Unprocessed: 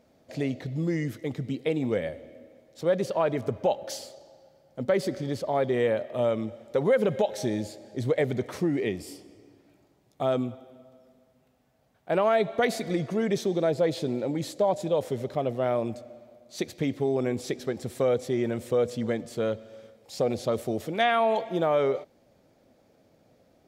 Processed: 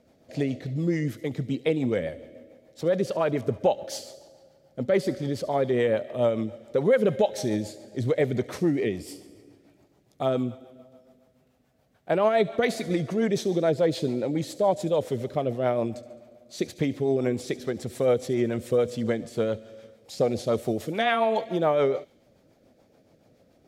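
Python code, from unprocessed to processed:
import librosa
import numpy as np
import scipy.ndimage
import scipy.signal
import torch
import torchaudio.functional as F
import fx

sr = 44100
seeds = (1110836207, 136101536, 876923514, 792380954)

p1 = fx.rotary(x, sr, hz=7.0)
p2 = p1 + fx.echo_wet_highpass(p1, sr, ms=71, feedback_pct=59, hz=3900.0, wet_db=-14.5, dry=0)
y = p2 * librosa.db_to_amplitude(3.5)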